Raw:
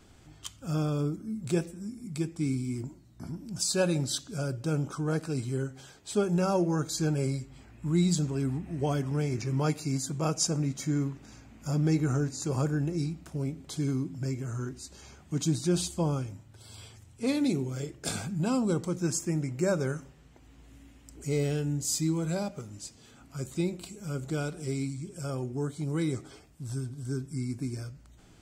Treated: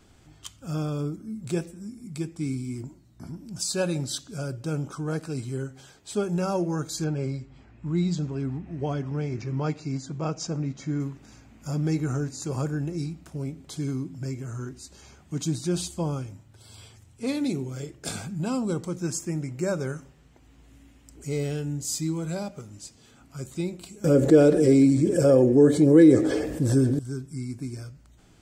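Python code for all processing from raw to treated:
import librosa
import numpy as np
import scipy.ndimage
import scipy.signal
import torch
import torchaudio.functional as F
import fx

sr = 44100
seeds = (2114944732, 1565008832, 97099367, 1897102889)

y = fx.chain(x, sr, fx.lowpass(hz=7000.0, slope=24),
    fx.high_shelf(hz=4400.0, db=-9.0), at=(7.04, 11.0))
y = fx.chain(y, sr, fx.peak_eq(hz=550.0, db=7.5, octaves=0.35),
    fx.small_body(hz=(320.0, 460.0, 1700.0), ring_ms=35, db=17),
    fx.env_flatten(amount_pct=50), at=(24.04, 26.99))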